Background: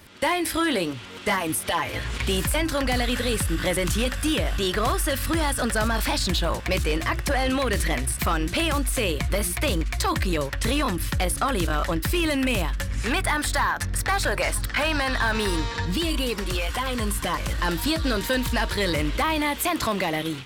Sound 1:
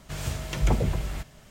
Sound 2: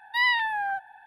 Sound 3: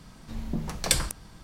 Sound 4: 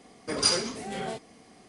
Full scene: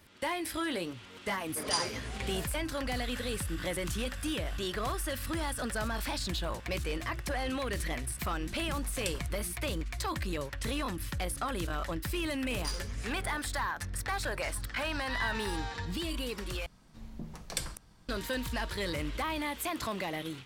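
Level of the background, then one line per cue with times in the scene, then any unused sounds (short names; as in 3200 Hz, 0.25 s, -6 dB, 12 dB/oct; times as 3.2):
background -10.5 dB
1.28 add 4 -8.5 dB
8.15 add 3 -15 dB
12.22 add 4 -13 dB + half-wave gain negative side -7 dB
14.95 add 2 -14.5 dB
16.66 replace with 3 -11.5 dB
not used: 1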